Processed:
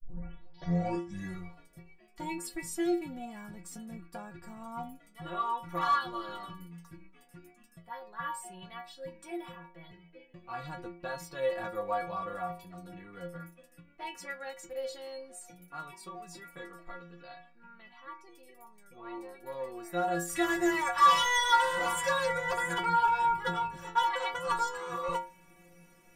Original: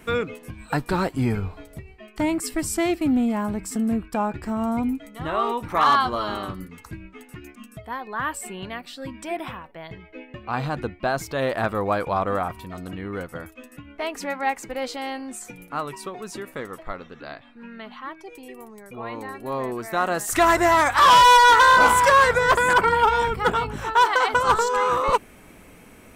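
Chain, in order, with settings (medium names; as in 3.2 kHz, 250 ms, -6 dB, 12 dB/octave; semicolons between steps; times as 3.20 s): tape start-up on the opening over 1.53 s; inharmonic resonator 170 Hz, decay 0.41 s, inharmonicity 0.008; trim +2 dB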